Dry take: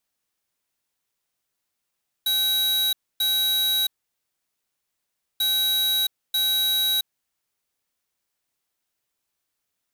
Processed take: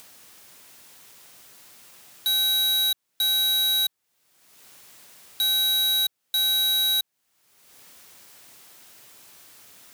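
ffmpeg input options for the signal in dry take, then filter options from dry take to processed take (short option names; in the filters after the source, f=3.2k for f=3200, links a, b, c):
-f lavfi -i "aevalsrc='0.0794*(2*lt(mod(3870*t,1),0.5)-1)*clip(min(mod(mod(t,3.14),0.94),0.67-mod(mod(t,3.14),0.94))/0.005,0,1)*lt(mod(t,3.14),1.88)':d=6.28:s=44100"
-af "highpass=88,acompressor=mode=upward:threshold=-26dB:ratio=2.5"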